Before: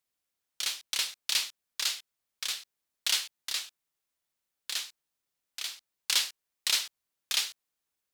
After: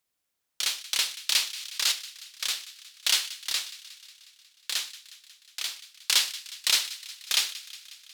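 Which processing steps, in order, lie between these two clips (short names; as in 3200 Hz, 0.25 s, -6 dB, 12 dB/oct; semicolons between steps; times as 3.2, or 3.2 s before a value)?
thin delay 0.181 s, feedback 66%, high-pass 1500 Hz, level -16 dB; 1.48–1.92 sustainer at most 34 dB/s; gain +4 dB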